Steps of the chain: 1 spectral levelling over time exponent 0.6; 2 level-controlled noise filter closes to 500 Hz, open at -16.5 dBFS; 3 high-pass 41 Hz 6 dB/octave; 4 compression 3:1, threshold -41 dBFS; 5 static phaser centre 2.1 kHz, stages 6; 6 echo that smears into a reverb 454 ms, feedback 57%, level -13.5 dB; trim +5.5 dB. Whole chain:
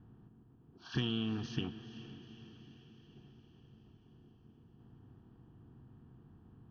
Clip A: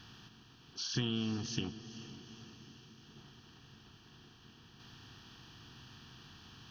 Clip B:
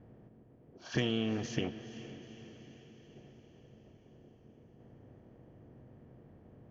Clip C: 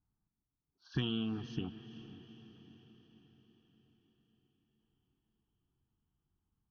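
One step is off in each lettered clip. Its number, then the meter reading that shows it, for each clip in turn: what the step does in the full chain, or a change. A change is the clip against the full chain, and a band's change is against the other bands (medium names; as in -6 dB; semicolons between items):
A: 2, 4 kHz band +3.0 dB; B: 5, loudness change +2.5 LU; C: 1, momentary loudness spread change -2 LU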